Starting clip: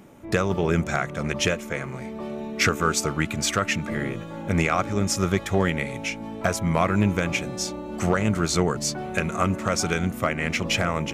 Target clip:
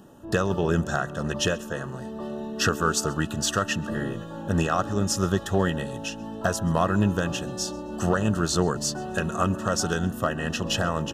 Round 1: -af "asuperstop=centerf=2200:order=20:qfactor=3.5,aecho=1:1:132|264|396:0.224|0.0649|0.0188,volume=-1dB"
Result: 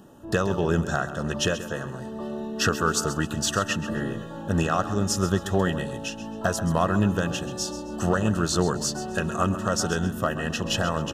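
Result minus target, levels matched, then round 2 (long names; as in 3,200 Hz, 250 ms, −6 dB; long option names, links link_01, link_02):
echo-to-direct +11.5 dB
-af "asuperstop=centerf=2200:order=20:qfactor=3.5,aecho=1:1:132|264:0.0596|0.0173,volume=-1dB"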